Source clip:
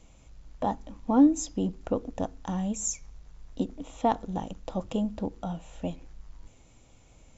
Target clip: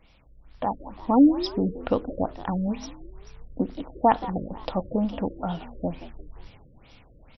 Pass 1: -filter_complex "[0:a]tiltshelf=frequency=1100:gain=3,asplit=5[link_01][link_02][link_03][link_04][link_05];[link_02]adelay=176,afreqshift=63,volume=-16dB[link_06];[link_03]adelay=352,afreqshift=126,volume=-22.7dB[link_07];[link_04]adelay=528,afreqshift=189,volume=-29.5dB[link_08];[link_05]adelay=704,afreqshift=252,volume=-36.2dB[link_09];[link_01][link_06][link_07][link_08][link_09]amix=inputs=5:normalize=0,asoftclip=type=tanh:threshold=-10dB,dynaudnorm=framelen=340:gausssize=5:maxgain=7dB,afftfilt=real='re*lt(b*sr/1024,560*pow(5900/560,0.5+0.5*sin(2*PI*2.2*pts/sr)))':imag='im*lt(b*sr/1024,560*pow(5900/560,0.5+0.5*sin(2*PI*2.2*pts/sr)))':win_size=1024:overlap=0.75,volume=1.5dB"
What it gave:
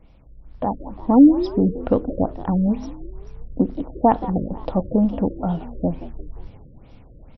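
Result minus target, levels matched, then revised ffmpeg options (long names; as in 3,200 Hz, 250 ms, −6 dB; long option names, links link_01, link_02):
1,000 Hz band −4.0 dB
-filter_complex "[0:a]tiltshelf=frequency=1100:gain=-5.5,asplit=5[link_01][link_02][link_03][link_04][link_05];[link_02]adelay=176,afreqshift=63,volume=-16dB[link_06];[link_03]adelay=352,afreqshift=126,volume=-22.7dB[link_07];[link_04]adelay=528,afreqshift=189,volume=-29.5dB[link_08];[link_05]adelay=704,afreqshift=252,volume=-36.2dB[link_09];[link_01][link_06][link_07][link_08][link_09]amix=inputs=5:normalize=0,asoftclip=type=tanh:threshold=-10dB,dynaudnorm=framelen=340:gausssize=5:maxgain=7dB,afftfilt=real='re*lt(b*sr/1024,560*pow(5900/560,0.5+0.5*sin(2*PI*2.2*pts/sr)))':imag='im*lt(b*sr/1024,560*pow(5900/560,0.5+0.5*sin(2*PI*2.2*pts/sr)))':win_size=1024:overlap=0.75,volume=1.5dB"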